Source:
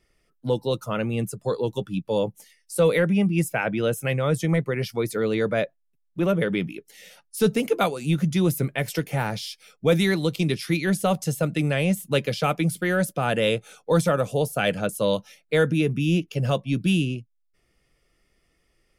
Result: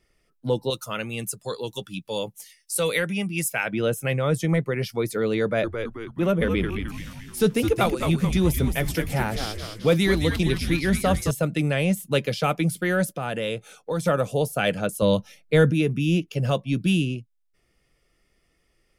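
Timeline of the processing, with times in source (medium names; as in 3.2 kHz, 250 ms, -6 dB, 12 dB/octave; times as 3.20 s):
0.70–3.73 s: tilt shelf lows -7.5 dB, about 1.5 kHz
5.42–11.31 s: frequency-shifting echo 216 ms, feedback 51%, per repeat -110 Hz, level -6 dB
13.16–14.06 s: compression 2:1, threshold -28 dBFS
15.02–15.71 s: bass shelf 200 Hz +11.5 dB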